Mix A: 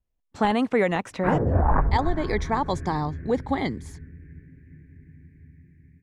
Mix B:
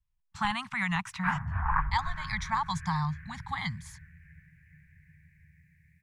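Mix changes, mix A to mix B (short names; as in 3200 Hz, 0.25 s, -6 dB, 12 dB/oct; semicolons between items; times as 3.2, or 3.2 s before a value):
background: add tilt shelf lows -9.5 dB, about 1100 Hz; master: add elliptic band-stop 170–980 Hz, stop band 60 dB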